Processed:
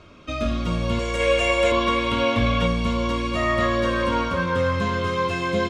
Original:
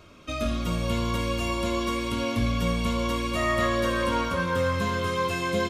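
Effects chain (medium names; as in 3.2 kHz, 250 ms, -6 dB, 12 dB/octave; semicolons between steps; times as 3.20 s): 0.99–1.72 s: ten-band graphic EQ 125 Hz -10 dB, 250 Hz -9 dB, 500 Hz +9 dB, 1 kHz -8 dB, 2 kHz +7 dB, 4 kHz -5 dB, 8 kHz +11 dB; 1.20–2.66 s: time-frequency box 450–4000 Hz +6 dB; distance through air 83 m; trim +3.5 dB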